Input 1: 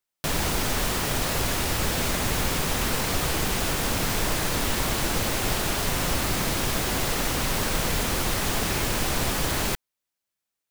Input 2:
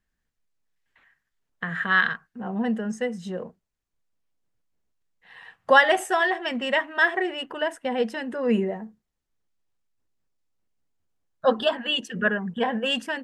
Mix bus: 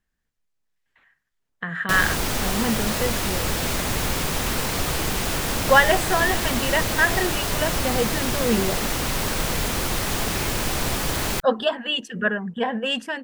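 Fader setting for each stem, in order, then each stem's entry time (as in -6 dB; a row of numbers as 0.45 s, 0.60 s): +1.0 dB, +0.5 dB; 1.65 s, 0.00 s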